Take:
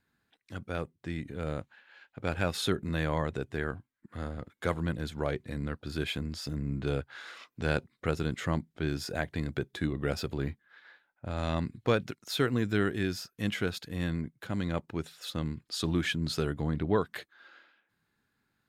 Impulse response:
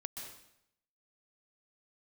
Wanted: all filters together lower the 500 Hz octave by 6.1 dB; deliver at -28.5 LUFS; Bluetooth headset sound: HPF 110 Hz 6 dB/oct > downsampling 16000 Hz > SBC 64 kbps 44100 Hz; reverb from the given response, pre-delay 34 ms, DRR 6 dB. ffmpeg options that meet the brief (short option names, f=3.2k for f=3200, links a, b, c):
-filter_complex "[0:a]equalizer=f=500:t=o:g=-7.5,asplit=2[a][b];[1:a]atrim=start_sample=2205,adelay=34[c];[b][c]afir=irnorm=-1:irlink=0,volume=-4.5dB[d];[a][d]amix=inputs=2:normalize=0,highpass=f=110:p=1,aresample=16000,aresample=44100,volume=6.5dB" -ar 44100 -c:a sbc -b:a 64k